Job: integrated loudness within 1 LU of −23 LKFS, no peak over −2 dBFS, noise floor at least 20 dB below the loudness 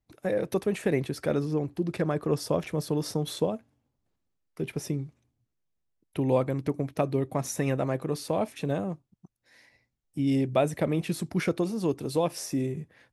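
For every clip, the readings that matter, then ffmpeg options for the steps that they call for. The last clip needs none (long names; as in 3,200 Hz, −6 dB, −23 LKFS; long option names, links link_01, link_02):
integrated loudness −29.5 LKFS; sample peak −11.0 dBFS; target loudness −23.0 LKFS
→ -af "volume=6.5dB"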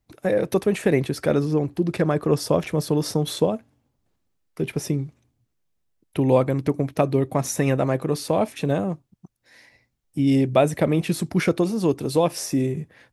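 integrated loudness −23.0 LKFS; sample peak −4.5 dBFS; background noise floor −74 dBFS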